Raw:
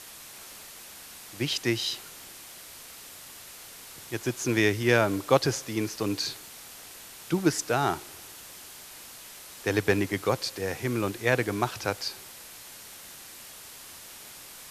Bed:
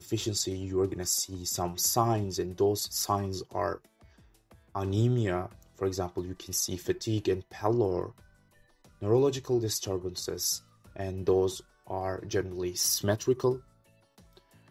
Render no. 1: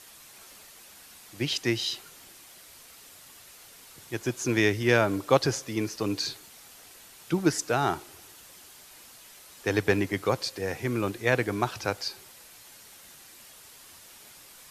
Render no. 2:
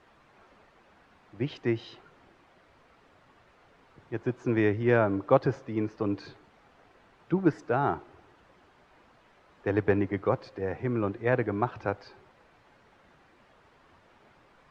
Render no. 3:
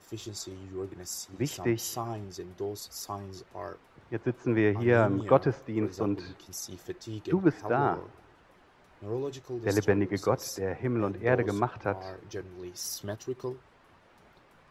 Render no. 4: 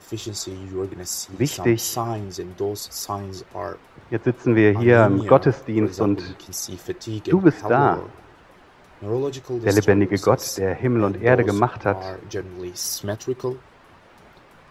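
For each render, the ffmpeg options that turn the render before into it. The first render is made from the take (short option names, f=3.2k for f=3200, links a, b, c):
-af "afftdn=nr=6:nf=-46"
-af "lowpass=1.4k"
-filter_complex "[1:a]volume=-9dB[a];[0:a][a]amix=inputs=2:normalize=0"
-af "volume=9.5dB,alimiter=limit=-2dB:level=0:latency=1"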